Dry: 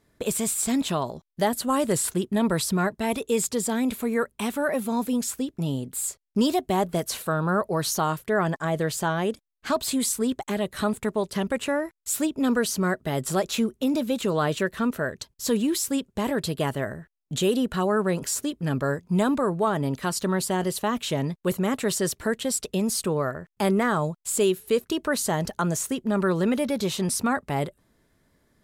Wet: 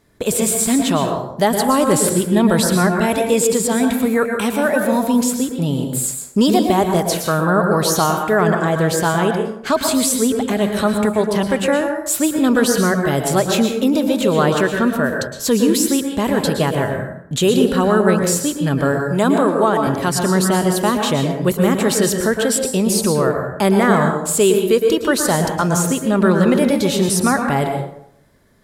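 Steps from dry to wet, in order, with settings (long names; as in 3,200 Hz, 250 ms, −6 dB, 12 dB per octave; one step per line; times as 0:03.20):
0:19.00–0:19.87: high-pass filter 210 Hz 24 dB per octave
dense smooth reverb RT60 0.72 s, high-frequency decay 0.55×, pre-delay 100 ms, DRR 3.5 dB
level +7.5 dB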